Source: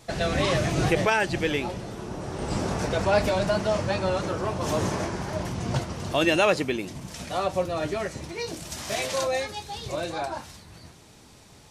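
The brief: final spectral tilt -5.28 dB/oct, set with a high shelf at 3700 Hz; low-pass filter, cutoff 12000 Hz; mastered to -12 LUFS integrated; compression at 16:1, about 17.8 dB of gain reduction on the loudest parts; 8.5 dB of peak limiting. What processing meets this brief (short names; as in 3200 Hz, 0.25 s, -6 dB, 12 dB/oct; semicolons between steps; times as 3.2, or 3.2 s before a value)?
LPF 12000 Hz; high shelf 3700 Hz -6.5 dB; compressor 16:1, threshold -35 dBFS; gain +29.5 dB; limiter -2 dBFS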